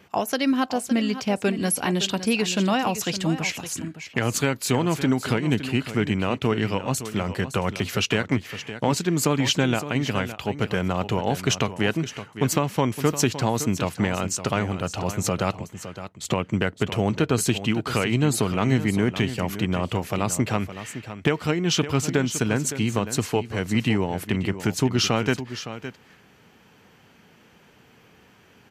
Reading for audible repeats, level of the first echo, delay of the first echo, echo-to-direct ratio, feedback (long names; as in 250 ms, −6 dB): 1, −12.0 dB, 563 ms, −12.0 dB, repeats not evenly spaced